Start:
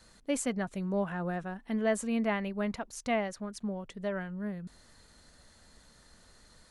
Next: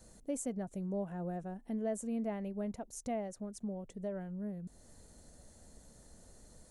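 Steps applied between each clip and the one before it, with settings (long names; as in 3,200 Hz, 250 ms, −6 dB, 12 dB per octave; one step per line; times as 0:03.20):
flat-topped bell 2,200 Hz −12.5 dB 2.6 octaves
downward compressor 1.5 to 1, threshold −53 dBFS, peak gain reduction 10 dB
level +3 dB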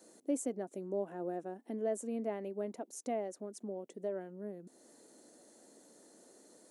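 four-pole ladder high-pass 270 Hz, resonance 50%
level +9 dB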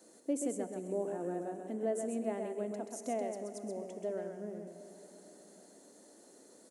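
single-tap delay 130 ms −5 dB
on a send at −10.5 dB: convolution reverb RT60 5.8 s, pre-delay 11 ms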